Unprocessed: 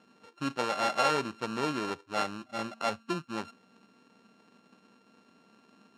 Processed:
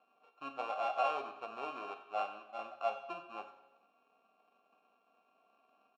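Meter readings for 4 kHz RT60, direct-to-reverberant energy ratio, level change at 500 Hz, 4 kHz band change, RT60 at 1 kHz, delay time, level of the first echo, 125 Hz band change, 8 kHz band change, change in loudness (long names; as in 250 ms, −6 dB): 0.90 s, 7.0 dB, −6.5 dB, −14.0 dB, 1.0 s, 92 ms, −16.5 dB, below −25 dB, below −20 dB, −7.5 dB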